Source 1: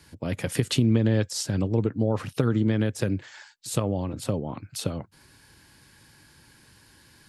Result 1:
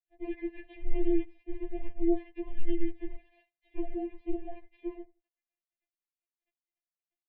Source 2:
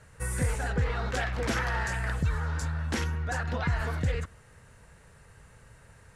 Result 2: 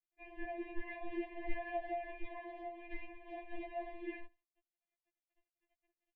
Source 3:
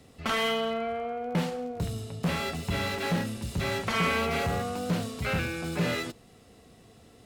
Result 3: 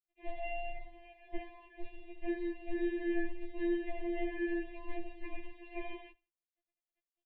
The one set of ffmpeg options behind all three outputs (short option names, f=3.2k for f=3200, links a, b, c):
-filter_complex "[0:a]acrossover=split=180|550|2000[a][b][c][d];[c]alimiter=level_in=7dB:limit=-24dB:level=0:latency=1:release=220,volume=-7dB[e];[d]acompressor=threshold=-49dB:ratio=6[f];[a][b][e][f]amix=inputs=4:normalize=0,aeval=exprs='sgn(val(0))*max(abs(val(0))-0.00531,0)':c=same,aecho=1:1:84|168:0.0631|0.0151,highpass=f=190:t=q:w=0.5412,highpass=f=190:t=q:w=1.307,lowpass=f=2.9k:t=q:w=0.5176,lowpass=f=2.9k:t=q:w=0.7071,lowpass=f=2.9k:t=q:w=1.932,afreqshift=-210,asuperstop=centerf=1300:order=12:qfactor=1.7,afftfilt=real='re*4*eq(mod(b,16),0)':imag='im*4*eq(mod(b,16),0)':win_size=2048:overlap=0.75"